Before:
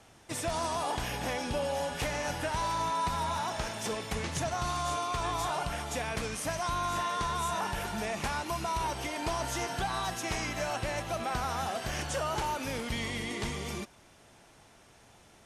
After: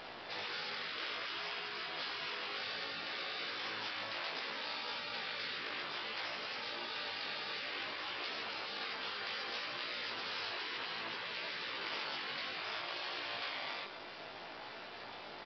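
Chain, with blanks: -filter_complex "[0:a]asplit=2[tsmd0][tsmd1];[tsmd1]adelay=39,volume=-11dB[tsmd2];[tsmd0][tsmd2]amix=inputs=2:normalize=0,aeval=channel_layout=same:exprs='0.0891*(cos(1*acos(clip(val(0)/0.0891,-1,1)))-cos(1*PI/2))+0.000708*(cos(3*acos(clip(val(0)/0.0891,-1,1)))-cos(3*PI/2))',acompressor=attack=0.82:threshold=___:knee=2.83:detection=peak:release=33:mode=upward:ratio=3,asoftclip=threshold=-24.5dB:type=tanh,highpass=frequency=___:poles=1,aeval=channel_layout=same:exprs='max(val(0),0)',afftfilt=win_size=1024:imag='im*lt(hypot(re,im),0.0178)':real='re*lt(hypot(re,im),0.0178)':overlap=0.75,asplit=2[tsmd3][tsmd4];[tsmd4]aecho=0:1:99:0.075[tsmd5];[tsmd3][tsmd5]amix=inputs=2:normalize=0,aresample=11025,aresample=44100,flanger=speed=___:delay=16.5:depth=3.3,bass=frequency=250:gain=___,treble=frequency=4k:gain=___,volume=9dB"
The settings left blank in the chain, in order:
-37dB, 170, 0.61, -11, 0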